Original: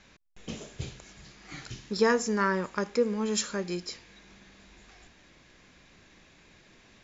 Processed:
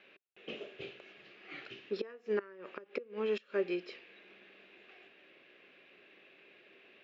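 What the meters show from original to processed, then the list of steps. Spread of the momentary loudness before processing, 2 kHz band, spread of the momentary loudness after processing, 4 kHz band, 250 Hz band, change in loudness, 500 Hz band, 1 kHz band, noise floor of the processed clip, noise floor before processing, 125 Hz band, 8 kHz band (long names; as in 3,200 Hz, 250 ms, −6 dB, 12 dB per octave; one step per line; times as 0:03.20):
19 LU, −11.0 dB, 24 LU, −11.5 dB, −12.0 dB, −9.5 dB, −6.5 dB, −17.5 dB, −64 dBFS, −59 dBFS, −17.5 dB, can't be measured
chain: gate with flip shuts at −20 dBFS, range −24 dB
loudspeaker in its box 350–3,300 Hz, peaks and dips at 390 Hz +9 dB, 560 Hz +4 dB, 940 Hz −8 dB, 2,700 Hz +9 dB
level −3.5 dB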